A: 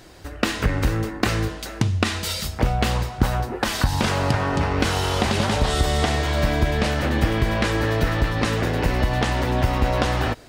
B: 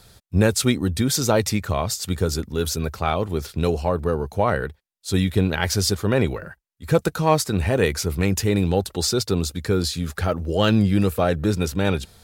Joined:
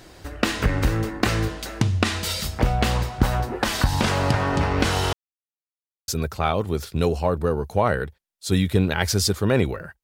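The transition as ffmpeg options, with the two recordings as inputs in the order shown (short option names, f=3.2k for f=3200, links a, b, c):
-filter_complex "[0:a]apad=whole_dur=10.03,atrim=end=10.03,asplit=2[a][b];[a]atrim=end=5.13,asetpts=PTS-STARTPTS,afade=t=out:st=5.126:d=0.004:c=hsin[c];[b]atrim=start=5.13:end=6.08,asetpts=PTS-STARTPTS,volume=0[d];[1:a]atrim=start=2.7:end=6.65,asetpts=PTS-STARTPTS,afade=t=in:d=0.004:c=hsin[e];[c][d][e]concat=n=3:v=0:a=1"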